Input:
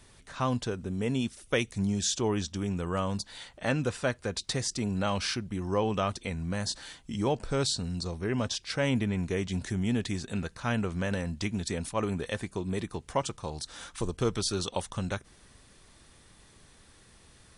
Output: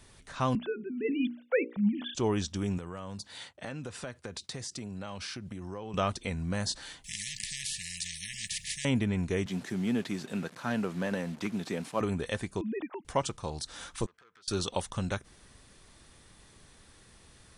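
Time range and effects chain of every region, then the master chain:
0.55–2.15 sine-wave speech + notches 60/120/180/240/300/360/420/480/540 Hz
2.78–5.94 expander -48 dBFS + HPF 71 Hz 24 dB/oct + compressor, threshold -36 dBFS
7.04–8.85 brick-wall FIR band-stop 190–1700 Hz + spectral compressor 10:1
9.46–12.01 delta modulation 64 kbps, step -43 dBFS + HPF 150 Hz 24 dB/oct + high shelf 4300 Hz -7 dB
12.61–13.05 sine-wave speech + compressor 1.5:1, threshold -36 dBFS
14.06–14.48 band-pass 1600 Hz, Q 2.2 + compressor 16:1, threshold -52 dBFS + core saturation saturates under 3700 Hz
whole clip: dry

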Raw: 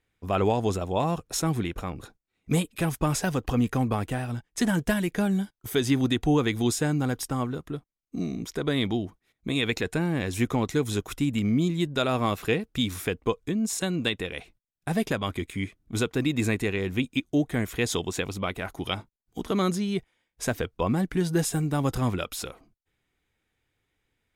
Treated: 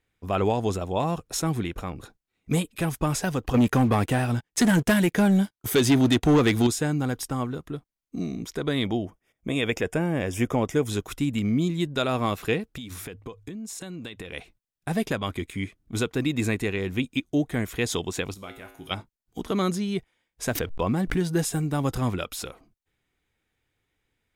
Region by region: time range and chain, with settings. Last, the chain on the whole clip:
3.54–6.67 HPF 77 Hz 6 dB/oct + sample leveller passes 2
8.85–10.87 Butterworth band-stop 4100 Hz, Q 3.6 + bell 580 Hz +7 dB 0.62 oct
12.69–14.33 de-hum 51.11 Hz, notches 2 + compressor 12:1, threshold -33 dBFS
18.34–18.91 high shelf 9700 Hz +11.5 dB + resonator 54 Hz, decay 0.68 s, harmonics odd, mix 80%
20.55–21.31 backlash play -53 dBFS + backwards sustainer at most 74 dB/s
whole clip: dry

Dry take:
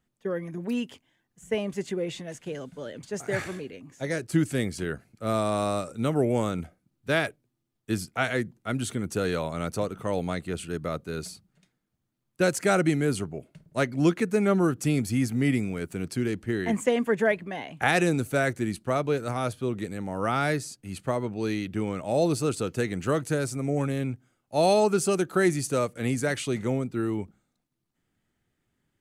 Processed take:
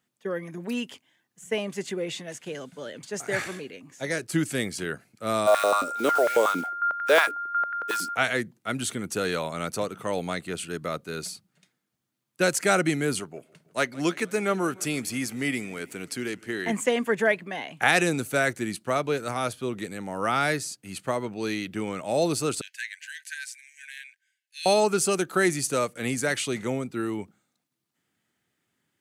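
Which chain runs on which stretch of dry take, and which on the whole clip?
5.46–8.14 block floating point 5-bit + whine 1400 Hz -35 dBFS + stepped high-pass 11 Hz 280–1700 Hz
13.2–16.66 low shelf 220 Hz -9 dB + warbling echo 0.16 s, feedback 63%, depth 100 cents, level -23 dB
22.61–24.66 brick-wall FIR high-pass 1500 Hz + high shelf 4100 Hz -9.5 dB
whole clip: HPF 130 Hz; tilt shelf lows -3.5 dB, about 890 Hz; gain +1.5 dB

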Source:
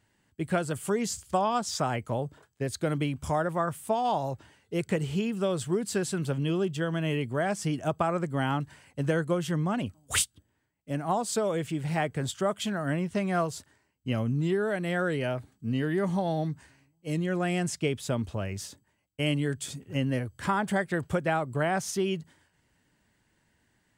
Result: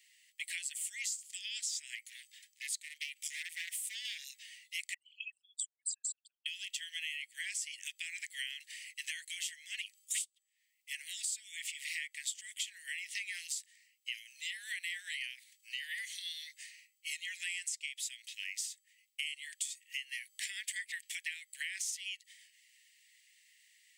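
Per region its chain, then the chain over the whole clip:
1.95–4.24 overloaded stage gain 23.5 dB + core saturation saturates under 330 Hz
4.94–6.46 formant sharpening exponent 3 + band shelf 1100 Hz -8 dB 2.7 oct
whole clip: steep high-pass 1900 Hz 96 dB/oct; dynamic EQ 7700 Hz, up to +7 dB, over -53 dBFS, Q 2.4; compressor 6:1, threshold -48 dBFS; gain +10.5 dB

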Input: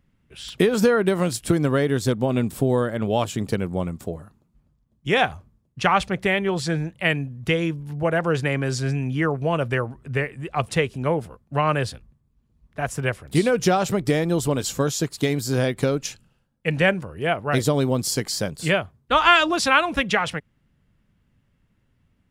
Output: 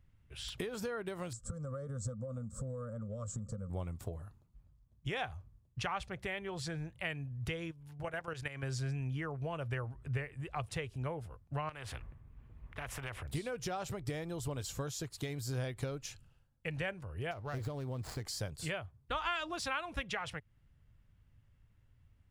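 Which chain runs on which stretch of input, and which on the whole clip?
1.33–3.7 EQ curve 150 Hz 0 dB, 220 Hz +9 dB, 350 Hz -23 dB, 530 Hz +9 dB, 820 Hz -29 dB, 1200 Hz +5 dB, 1900 Hz -21 dB, 2700 Hz -29 dB, 7800 Hz +5 dB, 11000 Hz -24 dB + compressor 3:1, threshold -30 dBFS
7.71–8.63 tilt shelf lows -4 dB, about 860 Hz + level quantiser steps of 11 dB
11.69–13.23 resonant high shelf 3300 Hz -12.5 dB, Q 1.5 + compressor 2.5:1, threshold -31 dBFS + spectral compressor 2:1
17.31–18.26 median filter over 15 samples + compressor 2:1, threshold -25 dBFS
whole clip: compressor 2.5:1, threshold -33 dBFS; EQ curve 110 Hz 0 dB, 190 Hz -14 dB, 780 Hz -8 dB; de-esser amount 90%; gain +1.5 dB

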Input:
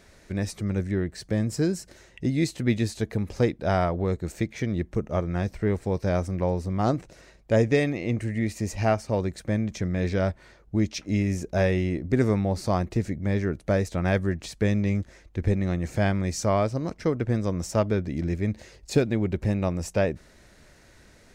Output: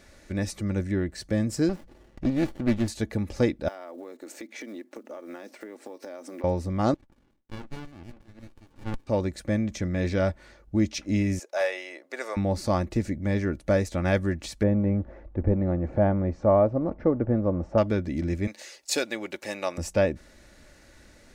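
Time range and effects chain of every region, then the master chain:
1.69–2.88 LPF 5300 Hz + notch 580 Hz, Q 6.2 + running maximum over 33 samples
3.68–6.44 block floating point 7-bit + elliptic high-pass 250 Hz, stop band 50 dB + compressor 16:1, threshold -36 dBFS
6.94–9.07 HPF 120 Hz 24 dB/oct + LFO band-pass saw down 5.5 Hz 730–4000 Hz + running maximum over 65 samples
11.39–12.37 HPF 570 Hz 24 dB/oct + hard clip -19.5 dBFS
14.63–17.78 G.711 law mismatch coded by mu + LPF 1000 Hz + bell 650 Hz +4 dB 1.4 oct
18.47–19.78 HPF 520 Hz + high shelf 2100 Hz +9 dB
whole clip: notch 950 Hz, Q 26; comb 3.5 ms, depth 37%

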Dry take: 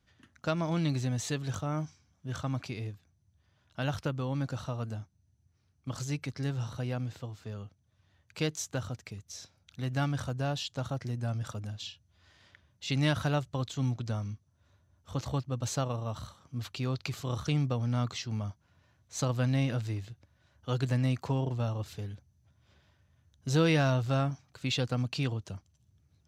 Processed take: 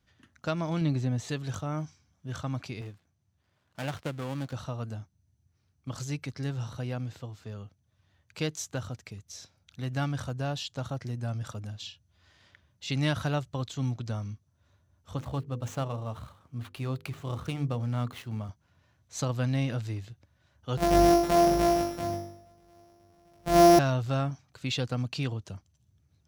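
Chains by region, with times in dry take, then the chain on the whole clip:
0.81–1.29 HPF 190 Hz 6 dB/oct + tilt -2.5 dB/oct
2.81–4.53 switching dead time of 0.22 ms + HPF 140 Hz 6 dB/oct + decimation joined by straight lines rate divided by 2×
15.17–18.49 median filter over 9 samples + notches 50/100/150/200/250/300/350/400/450/500 Hz
20.77–23.79 sample sorter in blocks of 256 samples + bell 670 Hz +11 dB 0.27 oct + flutter echo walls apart 3.5 m, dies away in 0.72 s
whole clip: dry

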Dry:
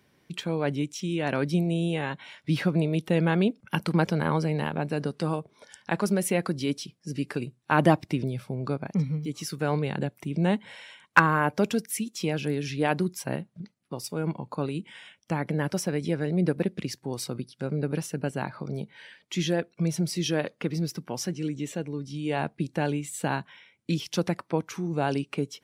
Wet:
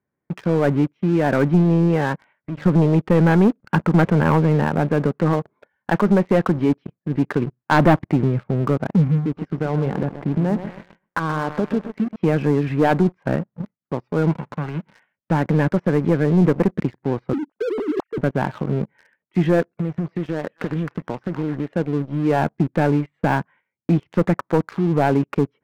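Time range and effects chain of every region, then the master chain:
2.16–2.66 notches 50/100/150/200/250/300/350 Hz + compressor 2:1, threshold -46 dBFS
9.24–12.16 compressor 4:1, threshold -27 dBFS + bell 2100 Hz -5 dB 2.4 oct + lo-fi delay 0.129 s, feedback 55%, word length 9-bit, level -10 dB
14.31–14.93 spectral whitening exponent 0.3 + bell 160 Hz +10 dB 0.53 oct + compressor 2:1, threshold -41 dBFS
17.33–18.18 sine-wave speech + LPF 1100 Hz + negative-ratio compressor -34 dBFS
19.68–21.73 compressor 12:1, threshold -30 dBFS + delay with a stepping band-pass 0.264 s, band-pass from 1300 Hz, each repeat 1.4 oct, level -1 dB + Doppler distortion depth 0.19 ms
whole clip: LPF 1800 Hz 24 dB/oct; gate -52 dBFS, range -10 dB; sample leveller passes 3

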